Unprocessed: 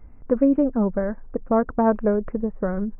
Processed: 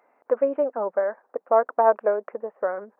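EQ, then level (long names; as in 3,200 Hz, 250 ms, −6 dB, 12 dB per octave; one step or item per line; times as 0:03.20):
four-pole ladder high-pass 480 Hz, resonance 30%
+8.0 dB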